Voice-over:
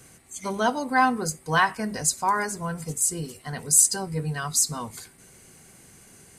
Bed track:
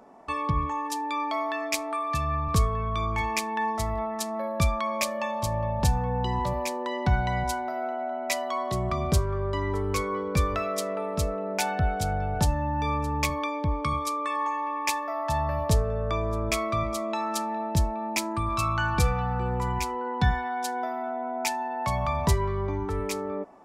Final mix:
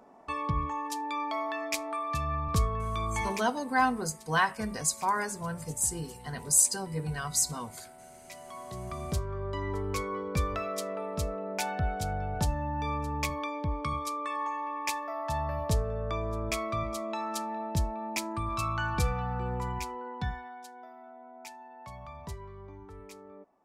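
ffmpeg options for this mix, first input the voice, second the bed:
ffmpeg -i stem1.wav -i stem2.wav -filter_complex "[0:a]adelay=2800,volume=-5dB[link_01];[1:a]volume=12.5dB,afade=type=out:start_time=3.25:duration=0.23:silence=0.133352,afade=type=in:start_time=8.25:duration=1.46:silence=0.149624,afade=type=out:start_time=19.54:duration=1.15:silence=0.223872[link_02];[link_01][link_02]amix=inputs=2:normalize=0" out.wav

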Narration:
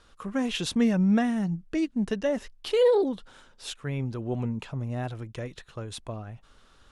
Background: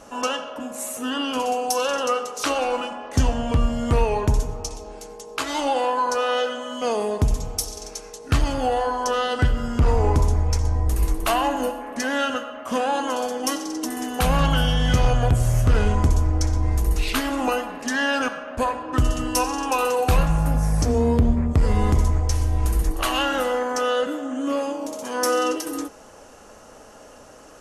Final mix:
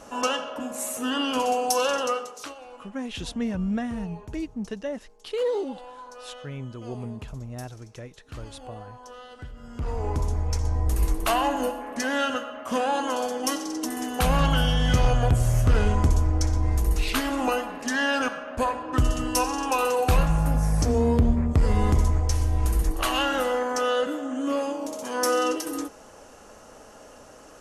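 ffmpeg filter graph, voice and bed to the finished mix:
ffmpeg -i stem1.wav -i stem2.wav -filter_complex "[0:a]adelay=2600,volume=-5dB[link_01];[1:a]volume=18.5dB,afade=type=out:start_time=1.87:duration=0.68:silence=0.0944061,afade=type=in:start_time=9.53:duration=1.43:silence=0.112202[link_02];[link_01][link_02]amix=inputs=2:normalize=0" out.wav

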